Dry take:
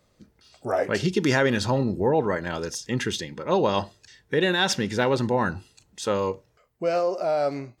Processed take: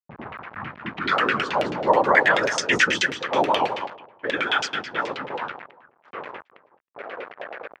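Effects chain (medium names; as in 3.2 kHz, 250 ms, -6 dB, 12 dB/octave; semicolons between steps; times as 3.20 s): tape start-up on the opening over 1.87 s; Doppler pass-by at 2.49 s, 30 m/s, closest 13 m; peaking EQ 7.4 kHz +11 dB 0.96 oct; on a send: feedback delay 208 ms, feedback 23%, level -8.5 dB; on the sum: whisper effect; small samples zeroed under -41.5 dBFS; high-pass 83 Hz; delay 383 ms -21.5 dB; LFO low-pass saw down 9.3 Hz 680–2900 Hz; tilt EQ +4 dB/octave; level-controlled noise filter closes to 1.2 kHz, open at -27 dBFS; warped record 78 rpm, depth 100 cents; trim +8.5 dB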